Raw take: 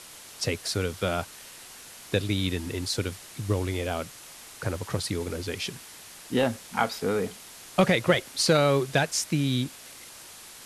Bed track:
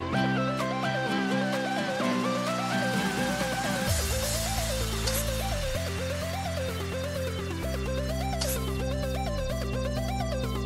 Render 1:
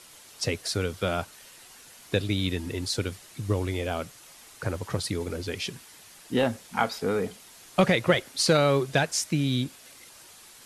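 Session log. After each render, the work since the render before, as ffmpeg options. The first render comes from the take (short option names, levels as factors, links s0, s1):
-af "afftdn=nr=6:nf=-47"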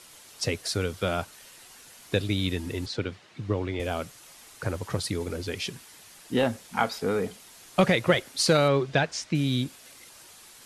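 -filter_complex "[0:a]asettb=1/sr,asplit=3[s0][s1][s2];[s0]atrim=end=2.864[s3];[s1]atrim=start=2.86:end=3.8,asetpts=PTS-STARTPTS,afade=t=in:d=0.004:c=qsin,afade=t=out:st=0.936:d=0.004:c=qsin,highpass=100,lowpass=3500[s4];[s2]atrim=start=3.796[s5];[s3][s4]acrossfade=d=0.004:c1=hsin:c2=qsin[s6];[s6][s5]acrossfade=d=0.004:c1=qsin:c2=hsin,asettb=1/sr,asplit=3[s7][s8][s9];[s7]atrim=end=8.684[s10];[s8]atrim=start=8.68:end=9.35,asetpts=PTS-STARTPTS,afade=t=in:d=0.004:c=qsin,afade=t=out:st=0.666:d=0.004:c=qsin,lowpass=4600[s11];[s9]atrim=start=9.346[s12];[s10][s11]acrossfade=d=0.004:c1=hsin:c2=qsin[s13];[s13][s12]acrossfade=d=0.004:c1=qsin:c2=hsin"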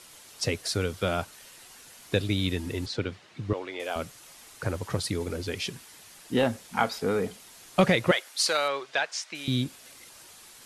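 -filter_complex "[0:a]asettb=1/sr,asplit=3[s0][s1][s2];[s0]atrim=end=3.534[s3];[s1]atrim=start=3.53:end=3.96,asetpts=PTS-STARTPTS,afade=t=in:d=0.004:c=qsin,afade=t=out:st=0.426:d=0.004:c=qsin,highpass=480[s4];[s2]atrim=start=3.956[s5];[s3][s4]acrossfade=d=0.004:c1=hsin:c2=qsin[s6];[s6][s5]acrossfade=d=0.004:c1=qsin:c2=hsin,asettb=1/sr,asplit=3[s7][s8][s9];[s7]atrim=end=8.114[s10];[s8]atrim=start=8.11:end=9.48,asetpts=PTS-STARTPTS,afade=t=in:d=0.004:c=qsin,afade=t=out:st=1.366:d=0.004:c=qsin,highpass=770[s11];[s9]atrim=start=9.476[s12];[s10][s11]acrossfade=d=0.004:c1=hsin:c2=qsin[s13];[s13][s12]acrossfade=d=0.004:c1=qsin:c2=hsin"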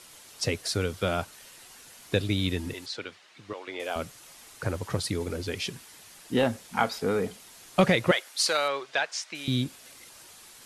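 -filter_complex "[0:a]asettb=1/sr,asplit=3[s0][s1][s2];[s0]atrim=end=2.734[s3];[s1]atrim=start=2.73:end=3.68,asetpts=PTS-STARTPTS,afade=t=in:d=0.004:c=qsin,afade=t=out:st=0.946:d=0.004:c=qsin,highpass=f=970:p=1[s4];[s2]atrim=start=3.676[s5];[s3][s4]acrossfade=d=0.004:c1=hsin:c2=qsin[s6];[s6][s5]acrossfade=d=0.004:c1=qsin:c2=hsin"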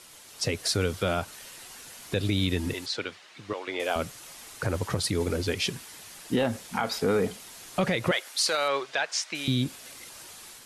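-af "alimiter=limit=0.1:level=0:latency=1:release=96,dynaudnorm=f=270:g=3:m=1.68"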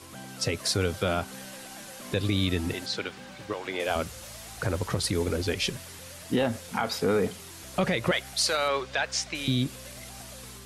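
-filter_complex "[1:a]volume=0.133[s0];[0:a][s0]amix=inputs=2:normalize=0"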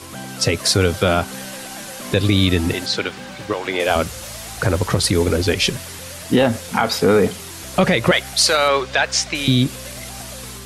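-af "volume=3.35"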